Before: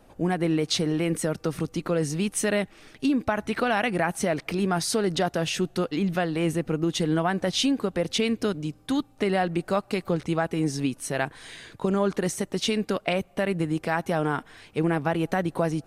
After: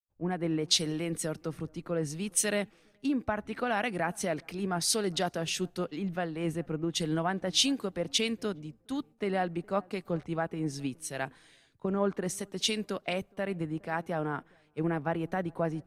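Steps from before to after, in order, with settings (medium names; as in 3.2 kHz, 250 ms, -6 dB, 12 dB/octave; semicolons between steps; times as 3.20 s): gate with hold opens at -45 dBFS; on a send: filtered feedback delay 417 ms, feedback 39%, low-pass 1.2 kHz, level -24 dB; on the sum: three bands expanded up and down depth 100%; trim -6.5 dB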